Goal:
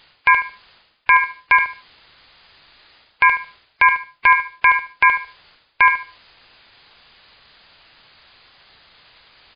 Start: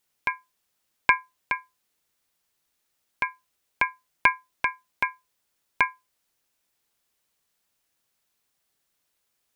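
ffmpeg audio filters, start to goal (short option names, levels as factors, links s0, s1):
-filter_complex "[0:a]equalizer=f=260:w=0.64:g=-8.5,areverse,acompressor=threshold=0.0178:ratio=10,areverse,asplit=2[s0][s1];[s1]adelay=74,lowpass=f=3400:p=1,volume=0.299,asplit=2[s2][s3];[s3]adelay=74,lowpass=f=3400:p=1,volume=0.25,asplit=2[s4][s5];[s5]adelay=74,lowpass=f=3400:p=1,volume=0.25[s6];[s0][s2][s4][s6]amix=inputs=4:normalize=0,alimiter=level_in=44.7:limit=0.891:release=50:level=0:latency=1,volume=0.891" -ar 11025 -c:a libmp3lame -b:a 24k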